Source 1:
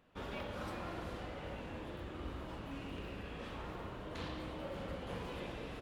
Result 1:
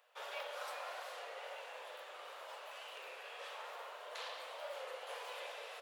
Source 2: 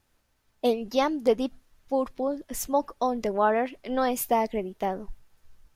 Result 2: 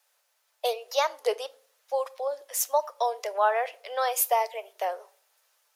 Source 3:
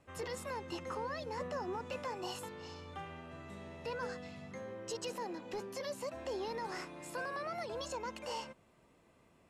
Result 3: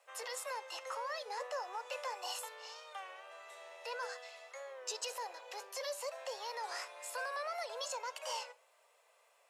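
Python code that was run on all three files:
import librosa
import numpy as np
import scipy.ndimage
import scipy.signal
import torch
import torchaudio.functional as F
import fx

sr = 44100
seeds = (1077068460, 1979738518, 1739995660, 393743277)

y = scipy.signal.sosfilt(scipy.signal.butter(8, 500.0, 'highpass', fs=sr, output='sos'), x)
y = fx.high_shelf(y, sr, hz=4000.0, db=7.0)
y = fx.room_shoebox(y, sr, seeds[0], volume_m3=660.0, walls='furnished', distance_m=0.34)
y = fx.record_warp(y, sr, rpm=33.33, depth_cents=100.0)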